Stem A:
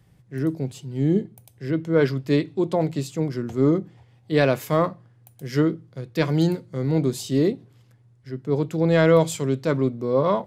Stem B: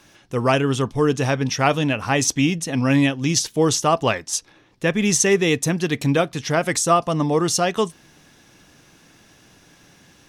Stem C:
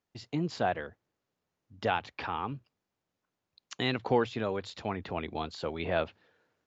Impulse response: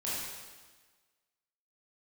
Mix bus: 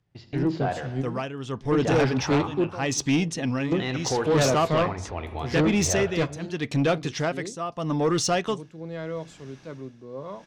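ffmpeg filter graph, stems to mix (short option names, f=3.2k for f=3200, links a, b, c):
-filter_complex "[0:a]volume=0.5dB[a];[1:a]tremolo=f=0.8:d=0.82,adelay=700,volume=-0.5dB[b];[2:a]lowpass=f=3.2k:p=1,asubboost=boost=10.5:cutoff=55,volume=1dB,asplit=3[c][d][e];[d]volume=-11.5dB[f];[e]apad=whole_len=466126[g];[a][g]sidechaingate=range=-17dB:threshold=-55dB:ratio=16:detection=peak[h];[3:a]atrim=start_sample=2205[i];[f][i]afir=irnorm=-1:irlink=0[j];[h][b][c][j]amix=inputs=4:normalize=0,lowpass=6k,asoftclip=type=tanh:threshold=-15.5dB"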